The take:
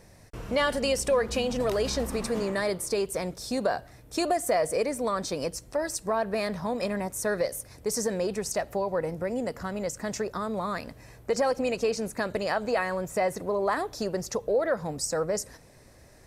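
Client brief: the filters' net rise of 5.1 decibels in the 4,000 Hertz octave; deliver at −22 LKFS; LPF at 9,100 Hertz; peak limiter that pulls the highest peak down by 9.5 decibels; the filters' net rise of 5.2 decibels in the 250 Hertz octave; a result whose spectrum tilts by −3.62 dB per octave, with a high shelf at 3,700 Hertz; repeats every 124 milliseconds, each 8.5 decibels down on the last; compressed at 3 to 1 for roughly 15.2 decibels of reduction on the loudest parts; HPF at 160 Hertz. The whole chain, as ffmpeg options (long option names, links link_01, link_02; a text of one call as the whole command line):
ffmpeg -i in.wav -af "highpass=160,lowpass=9100,equalizer=frequency=250:width_type=o:gain=7.5,highshelf=frequency=3700:gain=4.5,equalizer=frequency=4000:width_type=o:gain=3.5,acompressor=threshold=-41dB:ratio=3,alimiter=level_in=10dB:limit=-24dB:level=0:latency=1,volume=-10dB,aecho=1:1:124|248|372|496:0.376|0.143|0.0543|0.0206,volume=21dB" out.wav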